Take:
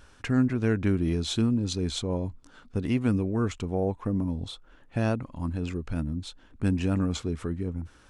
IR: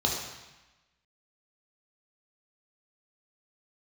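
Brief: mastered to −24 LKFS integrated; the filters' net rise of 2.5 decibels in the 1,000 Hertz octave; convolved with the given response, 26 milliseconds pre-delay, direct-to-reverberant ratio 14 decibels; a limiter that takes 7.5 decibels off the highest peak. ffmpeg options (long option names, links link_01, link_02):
-filter_complex "[0:a]equalizer=frequency=1000:width_type=o:gain=3.5,alimiter=limit=-19dB:level=0:latency=1,asplit=2[link_01][link_02];[1:a]atrim=start_sample=2205,adelay=26[link_03];[link_02][link_03]afir=irnorm=-1:irlink=0,volume=-24dB[link_04];[link_01][link_04]amix=inputs=2:normalize=0,volume=6.5dB"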